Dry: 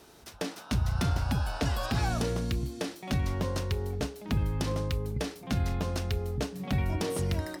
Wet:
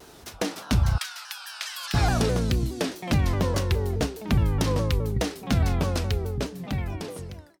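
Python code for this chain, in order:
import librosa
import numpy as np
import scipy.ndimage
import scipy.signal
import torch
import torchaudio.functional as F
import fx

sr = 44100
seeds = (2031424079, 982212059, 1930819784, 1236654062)

y = fx.fade_out_tail(x, sr, length_s=1.81)
y = fx.bessel_highpass(y, sr, hz=2000.0, order=4, at=(0.98, 1.94))
y = fx.vibrato_shape(y, sr, shape='saw_down', rate_hz=4.8, depth_cents=160.0)
y = F.gain(torch.from_numpy(y), 6.5).numpy()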